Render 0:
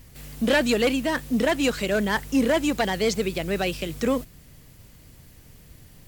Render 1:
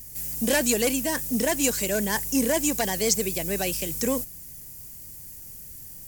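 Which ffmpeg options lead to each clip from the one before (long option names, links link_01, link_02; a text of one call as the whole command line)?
ffmpeg -i in.wav -af "bandreject=frequency=1300:width=5.2,aexciter=amount=7.7:drive=1.5:freq=5300,volume=-3dB" out.wav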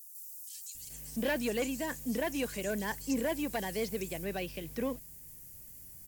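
ffmpeg -i in.wav -filter_complex "[0:a]acrossover=split=4300[link_01][link_02];[link_02]acompressor=threshold=-34dB:ratio=4:attack=1:release=60[link_03];[link_01][link_03]amix=inputs=2:normalize=0,acrossover=split=5100[link_04][link_05];[link_04]adelay=750[link_06];[link_06][link_05]amix=inputs=2:normalize=0,volume=-8dB" out.wav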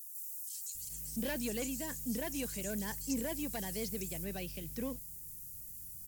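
ffmpeg -i in.wav -af "bass=frequency=250:gain=9,treble=frequency=4000:gain=11,volume=-8dB" out.wav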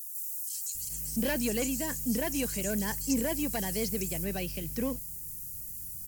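ffmpeg -i in.wav -af "bandreject=frequency=3600:width=8,volume=7dB" out.wav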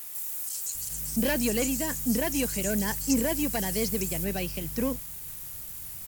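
ffmpeg -i in.wav -af "aeval=exprs='sgn(val(0))*max(abs(val(0))-0.00422,0)':channel_layout=same,volume=4.5dB" out.wav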